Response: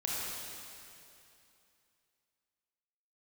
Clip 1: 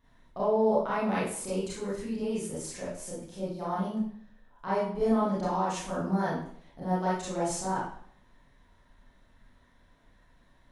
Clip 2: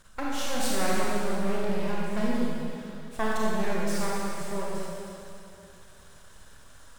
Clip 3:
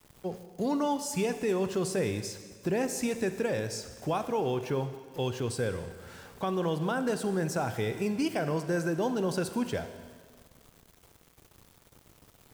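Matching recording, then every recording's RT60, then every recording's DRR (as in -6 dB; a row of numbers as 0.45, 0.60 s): 2; 0.60, 2.7, 1.7 s; -9.0, -5.5, 9.5 dB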